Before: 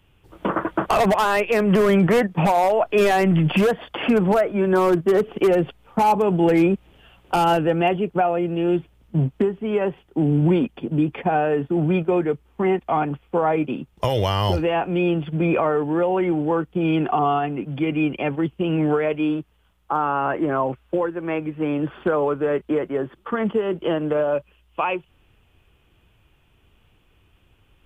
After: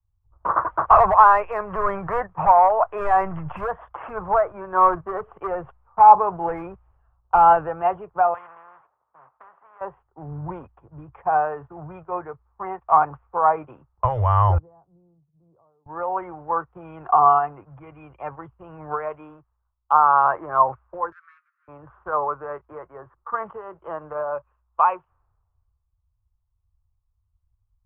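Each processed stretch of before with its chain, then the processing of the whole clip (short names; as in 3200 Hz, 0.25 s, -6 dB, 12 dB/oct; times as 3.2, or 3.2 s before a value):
8.34–9.81 HPF 480 Hz + spectral compressor 4:1
14.58–15.86 ladder band-pass 210 Hz, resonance 25% + three-band expander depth 40%
21.12–21.68 switching dead time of 0.15 ms + steep high-pass 1300 Hz 72 dB/oct + upward compressor, threshold -38 dBFS
whole clip: low-pass opened by the level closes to 1100 Hz, open at -16.5 dBFS; EQ curve 100 Hz 0 dB, 230 Hz -23 dB, 1100 Hz +8 dB, 3500 Hz -29 dB; three-band expander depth 70%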